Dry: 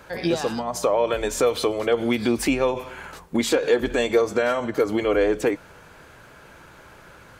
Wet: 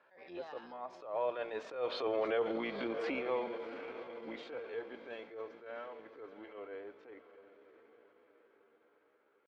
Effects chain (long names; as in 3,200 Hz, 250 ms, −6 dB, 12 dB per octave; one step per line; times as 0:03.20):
sub-octave generator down 2 octaves, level −2 dB
source passing by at 0:01.80, 13 m/s, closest 2.7 metres
high-frequency loss of the air 320 metres
feedback delay with all-pass diffusion 544 ms, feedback 52%, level −14 dB
tempo change 0.78×
brickwall limiter −23 dBFS, peak gain reduction 11.5 dB
band-pass filter 450–6,100 Hz
level that may rise only so fast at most 120 dB per second
level +1.5 dB